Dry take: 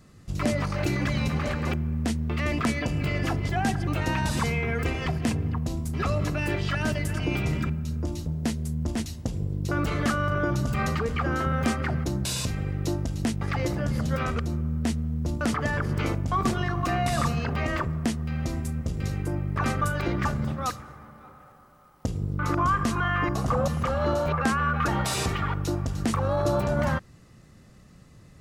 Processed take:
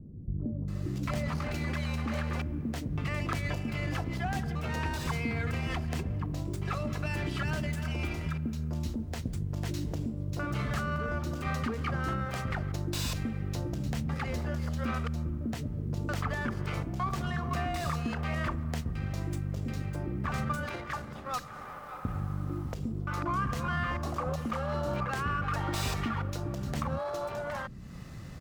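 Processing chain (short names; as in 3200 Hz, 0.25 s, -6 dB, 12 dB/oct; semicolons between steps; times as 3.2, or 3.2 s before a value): compressor 3:1, threshold -42 dBFS, peak gain reduction 16.5 dB; bands offset in time lows, highs 0.68 s, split 400 Hz; running maximum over 3 samples; gain +8 dB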